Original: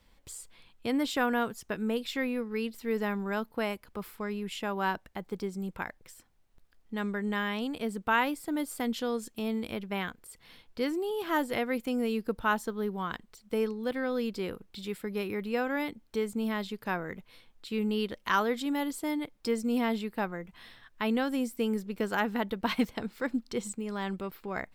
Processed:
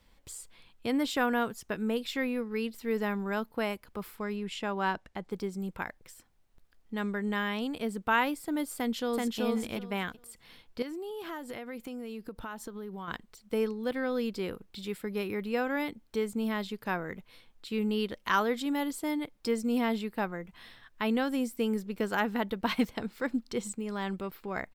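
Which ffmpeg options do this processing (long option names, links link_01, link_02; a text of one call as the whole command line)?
ffmpeg -i in.wav -filter_complex "[0:a]asettb=1/sr,asplit=3[link_01][link_02][link_03];[link_01]atrim=end=4.364[link_04];[link_02]atrim=start=4.36:end=5.31,asetpts=PTS-STARTPTS,afade=type=in:duration=0.004:curve=qsin,afade=type=out:start_time=0.946:duration=0.004:curve=qsin,lowpass=8400[link_05];[link_03]atrim=start=5.306[link_06];[link_04][link_05]acrossfade=duration=0.004:curve1=hsin:curve2=qsin[link_07];[link_07][link_06]acrossfade=duration=0.004:curve1=qsin:curve2=hsin,asplit=2[link_08][link_09];[link_09]afade=type=in:start_time=8.75:duration=0.01,afade=type=out:start_time=9.4:duration=0.01,aecho=0:1:380|760|1140:0.891251|0.133688|0.0200531[link_10];[link_08][link_10]amix=inputs=2:normalize=0,asettb=1/sr,asplit=3[link_11][link_12][link_13];[link_11]atrim=end=10.824[link_14];[link_12]atrim=start=10.82:end=13.08,asetpts=PTS-STARTPTS,afade=type=in:duration=0.004:curve=qsin,afade=type=out:start_time=2.256:duration=0.004:curve=qsin,acompressor=threshold=-36dB:ratio=8:attack=3.2:release=140:knee=1:detection=peak[link_15];[link_13]atrim=start=13.076[link_16];[link_14][link_15]acrossfade=duration=0.004:curve1=hsin:curve2=qsin[link_17];[link_17][link_16]acrossfade=duration=0.004:curve1=qsin:curve2=hsin" out.wav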